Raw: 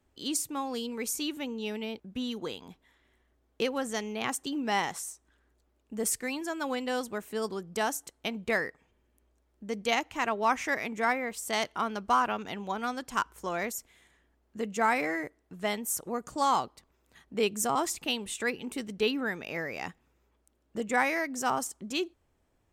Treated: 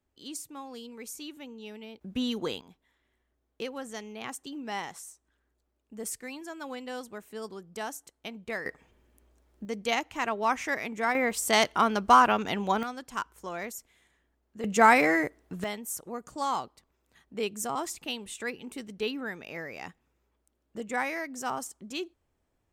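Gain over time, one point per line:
-8.5 dB
from 2.01 s +4 dB
from 2.61 s -6.5 dB
from 8.66 s +6 dB
from 9.65 s -0.5 dB
from 11.15 s +7 dB
from 12.83 s -4 dB
from 14.64 s +7.5 dB
from 15.64 s -4 dB

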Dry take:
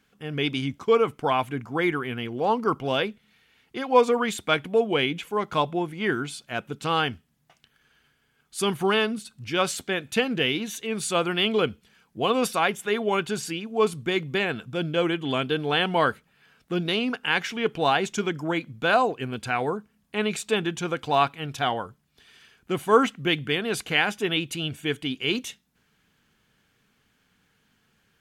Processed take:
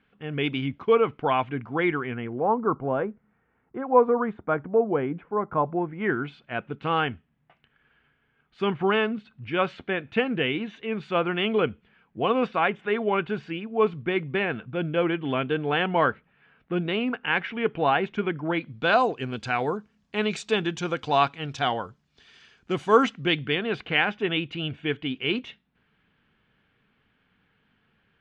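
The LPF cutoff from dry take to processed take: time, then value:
LPF 24 dB/oct
1.92 s 3100 Hz
2.53 s 1400 Hz
5.6 s 1400 Hz
6.28 s 2700 Hz
18.41 s 2700 Hz
19.05 s 6400 Hz
23.03 s 6400 Hz
23.7 s 3200 Hz

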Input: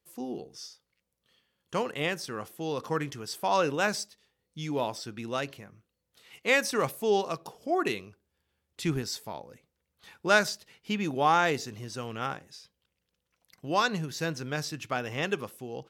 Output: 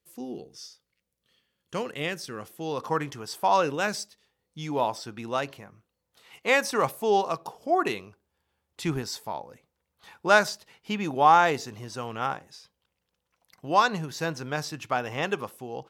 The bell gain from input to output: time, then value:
bell 890 Hz 1.1 oct
2.42 s -3.5 dB
2.88 s +7.5 dB
3.43 s +7.5 dB
3.88 s -1.5 dB
4.64 s +7.5 dB

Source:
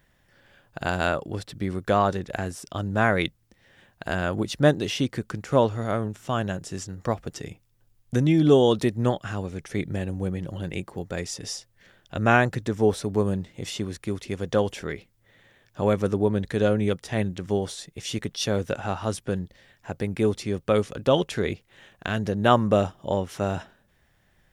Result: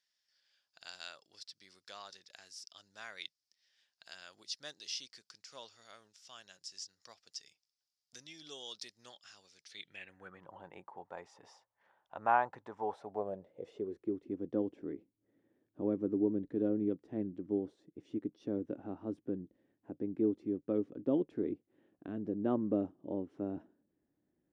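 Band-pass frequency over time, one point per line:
band-pass, Q 5
9.62 s 5000 Hz
10.51 s 900 Hz
12.87 s 900 Hz
14.25 s 300 Hz

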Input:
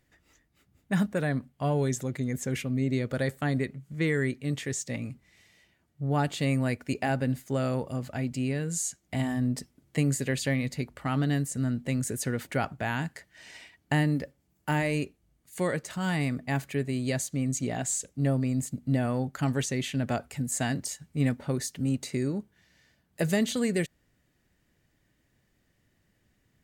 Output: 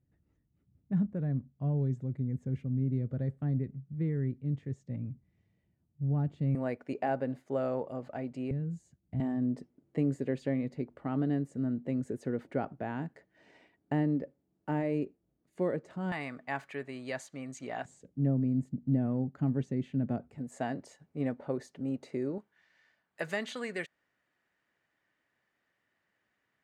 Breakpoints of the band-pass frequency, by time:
band-pass, Q 0.97
120 Hz
from 6.55 s 580 Hz
from 8.51 s 110 Hz
from 9.2 s 360 Hz
from 16.12 s 1100 Hz
from 17.85 s 210 Hz
from 20.38 s 550 Hz
from 22.38 s 1300 Hz

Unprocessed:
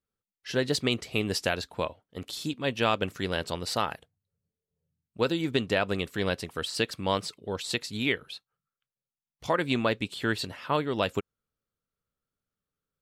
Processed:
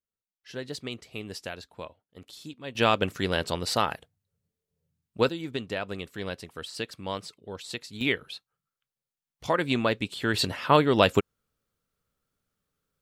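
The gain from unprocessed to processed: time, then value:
-9.5 dB
from 2.75 s +3 dB
from 5.29 s -6 dB
from 8.01 s +1 dB
from 10.34 s +7.5 dB

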